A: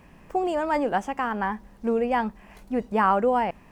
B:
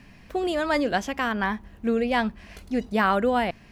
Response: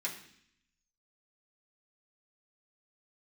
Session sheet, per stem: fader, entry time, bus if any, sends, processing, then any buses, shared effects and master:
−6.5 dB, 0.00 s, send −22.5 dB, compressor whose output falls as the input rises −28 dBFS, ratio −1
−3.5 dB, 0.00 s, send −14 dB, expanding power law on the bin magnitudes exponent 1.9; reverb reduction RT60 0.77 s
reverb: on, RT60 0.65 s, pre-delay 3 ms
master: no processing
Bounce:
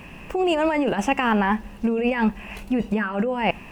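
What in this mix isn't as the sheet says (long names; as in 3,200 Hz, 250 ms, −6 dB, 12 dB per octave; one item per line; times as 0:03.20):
stem A −6.5 dB → +5.5 dB
master: extra parametric band 2,700 Hz +12.5 dB 0.32 octaves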